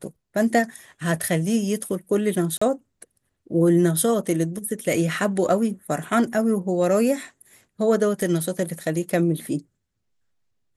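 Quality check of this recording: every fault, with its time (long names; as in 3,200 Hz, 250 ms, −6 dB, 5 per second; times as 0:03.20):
0:02.58–0:02.62: drop-out 35 ms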